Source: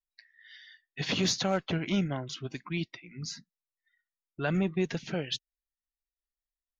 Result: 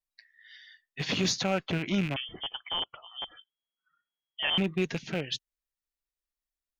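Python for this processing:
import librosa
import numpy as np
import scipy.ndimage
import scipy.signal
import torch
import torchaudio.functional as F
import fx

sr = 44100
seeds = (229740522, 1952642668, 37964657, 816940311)

y = fx.rattle_buzz(x, sr, strikes_db=-35.0, level_db=-26.0)
y = fx.freq_invert(y, sr, carrier_hz=3300, at=(2.16, 4.58))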